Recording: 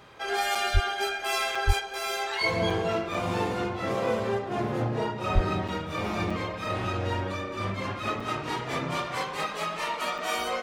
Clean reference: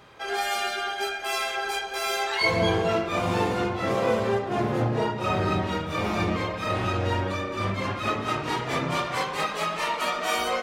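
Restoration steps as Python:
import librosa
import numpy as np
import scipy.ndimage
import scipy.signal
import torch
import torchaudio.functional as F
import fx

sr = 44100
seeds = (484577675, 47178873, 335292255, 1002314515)

y = fx.fix_deplosive(x, sr, at_s=(0.73, 1.66, 5.34))
y = fx.fix_interpolate(y, sr, at_s=(0.55, 1.55, 2.7, 3.14, 5.68, 6.3, 8.2, 10.18), length_ms=4.5)
y = fx.gain(y, sr, db=fx.steps((0.0, 0.0), (1.8, 3.5)))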